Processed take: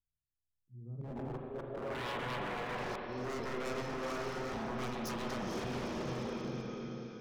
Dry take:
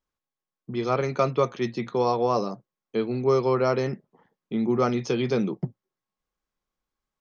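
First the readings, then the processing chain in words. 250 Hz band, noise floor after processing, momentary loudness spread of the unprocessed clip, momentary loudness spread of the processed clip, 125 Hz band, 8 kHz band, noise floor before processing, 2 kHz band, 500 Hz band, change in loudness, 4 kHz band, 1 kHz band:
-12.5 dB, under -85 dBFS, 11 LU, 5 LU, -11.5 dB, n/a, under -85 dBFS, -3.5 dB, -15.0 dB, -14.0 dB, -5.5 dB, -11.5 dB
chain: diffused feedback echo 0.457 s, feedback 49%, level -4.5 dB; compressor 12:1, threshold -27 dBFS, peak gain reduction 12 dB; low-pass sweep 110 Hz -> 5700 Hz, 0.7–3.1; auto swell 0.386 s; wavefolder -31 dBFS; spring tank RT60 2.7 s, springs 34/40/47 ms, chirp 65 ms, DRR 0.5 dB; gain -5.5 dB

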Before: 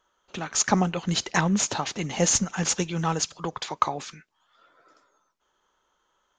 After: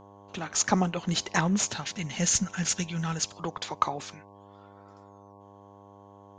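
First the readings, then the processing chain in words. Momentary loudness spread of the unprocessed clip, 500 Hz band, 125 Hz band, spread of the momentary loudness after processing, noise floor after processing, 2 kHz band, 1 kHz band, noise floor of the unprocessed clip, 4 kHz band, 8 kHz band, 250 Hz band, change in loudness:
11 LU, -5.0 dB, -2.5 dB, 11 LU, -52 dBFS, -2.5 dB, -3.5 dB, -73 dBFS, -2.5 dB, -2.5 dB, -2.5 dB, -3.0 dB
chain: spectral gain 1.71–3.22, 250–1300 Hz -9 dB; buzz 100 Hz, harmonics 11, -49 dBFS -1 dB/oct; gain -2.5 dB

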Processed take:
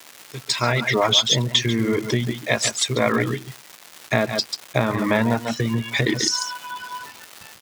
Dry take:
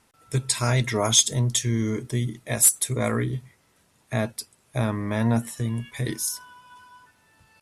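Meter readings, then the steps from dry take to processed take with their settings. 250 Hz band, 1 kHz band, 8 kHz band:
+4.0 dB, +7.5 dB, -4.0 dB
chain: opening faded in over 1.85 s; gate with hold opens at -47 dBFS; AGC gain up to 13 dB; air absorption 140 m; echo 0.14 s -6.5 dB; reverb removal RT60 0.68 s; compressor, threshold -17 dBFS, peak gain reduction 8 dB; treble ducked by the level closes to 2900 Hz, closed at -18.5 dBFS; bell 5400 Hz +9.5 dB 1.9 oct; crackle 520/s -33 dBFS; HPF 290 Hz 6 dB/oct; gain +5 dB

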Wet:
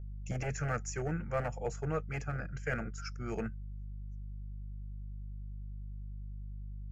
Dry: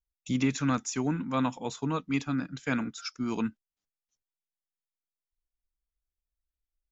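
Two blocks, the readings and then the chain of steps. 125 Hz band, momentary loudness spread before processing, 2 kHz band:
-0.5 dB, 6 LU, -3.0 dB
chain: dynamic EQ 2800 Hz, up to -6 dB, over -48 dBFS, Q 0.91; hum 50 Hz, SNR 10 dB; hard clip -23.5 dBFS, distortion -15 dB; high shelf 6800 Hz -9 dB; fixed phaser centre 1000 Hz, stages 6; gain +2.5 dB

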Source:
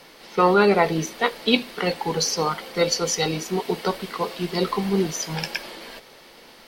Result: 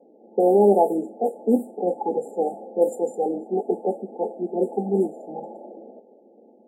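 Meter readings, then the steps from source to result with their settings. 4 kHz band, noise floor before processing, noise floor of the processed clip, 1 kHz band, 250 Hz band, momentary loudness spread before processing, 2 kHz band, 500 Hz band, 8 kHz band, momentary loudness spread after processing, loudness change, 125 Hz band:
under -40 dB, -48 dBFS, -54 dBFS, -2.5 dB, 0.0 dB, 12 LU, under -40 dB, +2.5 dB, under -20 dB, 16 LU, -0.5 dB, -7.5 dB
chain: elliptic high-pass 210 Hz, stop band 40 dB; low-pass opened by the level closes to 450 Hz, open at -16.5 dBFS; FFT band-reject 880–7100 Hz; gain +2.5 dB

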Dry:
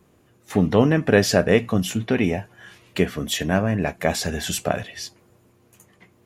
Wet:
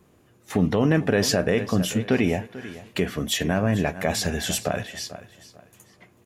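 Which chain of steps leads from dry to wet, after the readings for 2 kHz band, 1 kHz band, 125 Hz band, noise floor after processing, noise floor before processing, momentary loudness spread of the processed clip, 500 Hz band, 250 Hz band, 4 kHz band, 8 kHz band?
-2.5 dB, -3.0 dB, -1.5 dB, -59 dBFS, -59 dBFS, 13 LU, -3.5 dB, -2.0 dB, 0.0 dB, 0.0 dB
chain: on a send: feedback echo 0.443 s, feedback 28%, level -17 dB; on the sum: limiter -9.5 dBFS, peak gain reduction 7.5 dB

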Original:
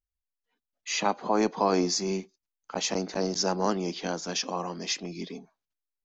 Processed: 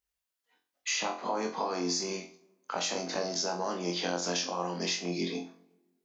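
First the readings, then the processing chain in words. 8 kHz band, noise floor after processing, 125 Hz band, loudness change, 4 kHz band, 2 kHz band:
n/a, under -85 dBFS, -5.0 dB, -3.5 dB, -1.0 dB, -0.5 dB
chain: HPF 44 Hz; low shelf 250 Hz -11 dB; in parallel at 0 dB: limiter -24 dBFS, peak gain reduction 11.5 dB; on the sum: compressor, threshold -31 dBFS, peak gain reduction 12.5 dB; on a send: flutter echo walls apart 3.9 m, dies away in 0.34 s; on the sum: plate-style reverb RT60 1.4 s, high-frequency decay 0.55×, DRR 20 dB

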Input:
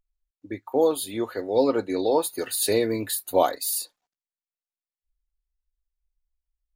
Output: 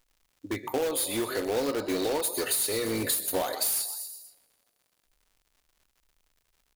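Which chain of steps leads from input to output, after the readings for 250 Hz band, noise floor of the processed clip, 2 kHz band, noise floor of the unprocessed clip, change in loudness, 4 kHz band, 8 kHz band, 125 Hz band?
-4.5 dB, -75 dBFS, +1.5 dB, under -85 dBFS, -3.5 dB, +0.5 dB, +1.0 dB, -2.5 dB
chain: high shelf 3000 Hz +10.5 dB; on a send: frequency-shifting echo 0.121 s, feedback 49%, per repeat +37 Hz, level -17 dB; on the sum: compressor 16:1, threshold -25 dBFS, peak gain reduction 14 dB; two-slope reverb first 0.74 s, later 2.9 s, from -28 dB, DRR 11.5 dB; in parallel at -7 dB: wrapped overs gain 26.5 dB; on the sum: crackle 160/s -53 dBFS

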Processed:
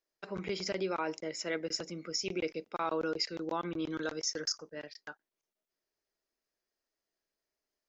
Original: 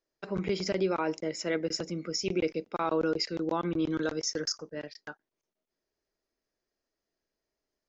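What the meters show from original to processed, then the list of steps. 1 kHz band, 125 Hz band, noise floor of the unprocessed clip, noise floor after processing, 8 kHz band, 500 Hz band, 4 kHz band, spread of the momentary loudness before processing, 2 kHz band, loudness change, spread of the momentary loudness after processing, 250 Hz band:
-3.0 dB, -8.0 dB, under -85 dBFS, under -85 dBFS, n/a, -5.5 dB, -1.5 dB, 8 LU, -2.0 dB, -4.5 dB, 10 LU, -7.0 dB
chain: low shelf 490 Hz -7.5 dB; gain -1.5 dB

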